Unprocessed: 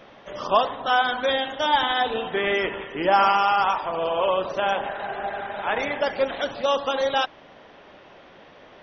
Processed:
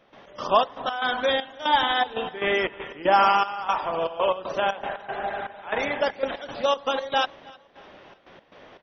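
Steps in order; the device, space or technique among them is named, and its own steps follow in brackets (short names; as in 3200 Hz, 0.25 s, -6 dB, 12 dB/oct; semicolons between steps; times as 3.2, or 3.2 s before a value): trance gate with a delay (step gate ".x.xx.x.xxx..xxx" 118 bpm -12 dB; feedback echo 0.311 s, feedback 41%, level -24 dB)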